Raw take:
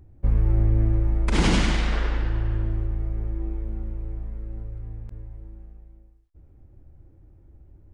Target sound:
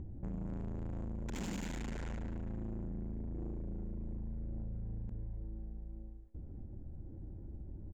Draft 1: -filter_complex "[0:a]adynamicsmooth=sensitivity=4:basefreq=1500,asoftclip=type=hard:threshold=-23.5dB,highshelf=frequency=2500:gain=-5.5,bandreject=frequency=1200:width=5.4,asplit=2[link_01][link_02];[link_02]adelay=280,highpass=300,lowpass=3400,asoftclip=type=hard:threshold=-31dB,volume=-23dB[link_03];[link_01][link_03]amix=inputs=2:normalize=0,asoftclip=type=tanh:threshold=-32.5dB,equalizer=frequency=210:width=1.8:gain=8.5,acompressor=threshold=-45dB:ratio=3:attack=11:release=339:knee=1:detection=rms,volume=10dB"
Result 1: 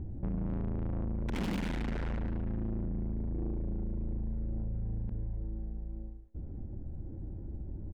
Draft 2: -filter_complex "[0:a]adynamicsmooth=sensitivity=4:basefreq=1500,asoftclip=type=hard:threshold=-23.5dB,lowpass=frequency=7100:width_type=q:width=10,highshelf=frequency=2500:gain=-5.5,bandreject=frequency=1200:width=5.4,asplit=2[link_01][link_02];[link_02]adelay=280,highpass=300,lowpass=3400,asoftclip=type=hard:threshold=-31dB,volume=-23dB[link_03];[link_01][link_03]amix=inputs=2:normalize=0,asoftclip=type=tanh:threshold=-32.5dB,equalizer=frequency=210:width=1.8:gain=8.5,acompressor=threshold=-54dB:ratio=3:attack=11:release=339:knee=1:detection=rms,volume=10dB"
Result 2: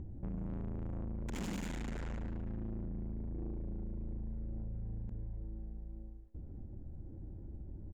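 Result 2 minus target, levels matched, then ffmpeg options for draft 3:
hard clipping: distortion −4 dB
-filter_complex "[0:a]adynamicsmooth=sensitivity=4:basefreq=1500,asoftclip=type=hard:threshold=-31dB,lowpass=frequency=7100:width_type=q:width=10,highshelf=frequency=2500:gain=-5.5,bandreject=frequency=1200:width=5.4,asplit=2[link_01][link_02];[link_02]adelay=280,highpass=300,lowpass=3400,asoftclip=type=hard:threshold=-31dB,volume=-23dB[link_03];[link_01][link_03]amix=inputs=2:normalize=0,asoftclip=type=tanh:threshold=-32.5dB,equalizer=frequency=210:width=1.8:gain=8.5,acompressor=threshold=-54dB:ratio=3:attack=11:release=339:knee=1:detection=rms,volume=10dB"

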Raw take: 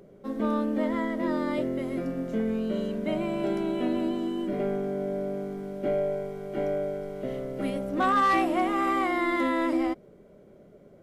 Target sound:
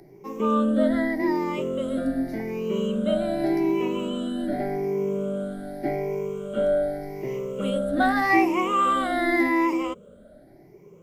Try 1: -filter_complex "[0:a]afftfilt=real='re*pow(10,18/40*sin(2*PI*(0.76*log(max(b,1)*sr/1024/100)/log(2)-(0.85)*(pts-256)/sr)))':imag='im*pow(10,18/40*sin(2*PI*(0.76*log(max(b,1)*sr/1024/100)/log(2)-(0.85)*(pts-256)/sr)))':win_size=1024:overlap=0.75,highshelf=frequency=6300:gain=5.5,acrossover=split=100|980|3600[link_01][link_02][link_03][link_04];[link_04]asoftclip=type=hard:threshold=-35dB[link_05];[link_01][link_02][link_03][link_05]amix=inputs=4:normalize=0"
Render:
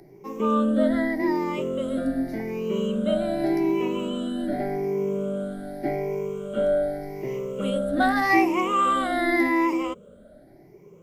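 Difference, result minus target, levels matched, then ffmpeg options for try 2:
hard clipping: distortion −9 dB
-filter_complex "[0:a]afftfilt=real='re*pow(10,18/40*sin(2*PI*(0.76*log(max(b,1)*sr/1024/100)/log(2)-(0.85)*(pts-256)/sr)))':imag='im*pow(10,18/40*sin(2*PI*(0.76*log(max(b,1)*sr/1024/100)/log(2)-(0.85)*(pts-256)/sr)))':win_size=1024:overlap=0.75,highshelf=frequency=6300:gain=5.5,acrossover=split=100|980|3600[link_01][link_02][link_03][link_04];[link_04]asoftclip=type=hard:threshold=-42.5dB[link_05];[link_01][link_02][link_03][link_05]amix=inputs=4:normalize=0"

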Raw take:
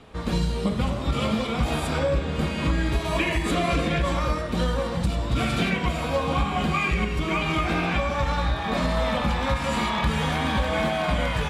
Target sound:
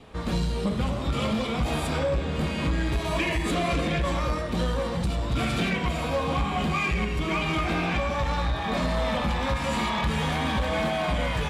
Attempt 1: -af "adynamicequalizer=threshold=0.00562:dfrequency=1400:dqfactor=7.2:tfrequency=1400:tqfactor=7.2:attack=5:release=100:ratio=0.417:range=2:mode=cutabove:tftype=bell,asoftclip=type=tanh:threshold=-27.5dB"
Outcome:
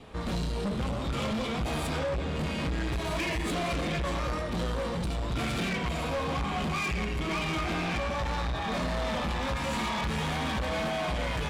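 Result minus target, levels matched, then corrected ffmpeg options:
soft clipping: distortion +9 dB
-af "adynamicequalizer=threshold=0.00562:dfrequency=1400:dqfactor=7.2:tfrequency=1400:tqfactor=7.2:attack=5:release=100:ratio=0.417:range=2:mode=cutabove:tftype=bell,asoftclip=type=tanh:threshold=-18.5dB"

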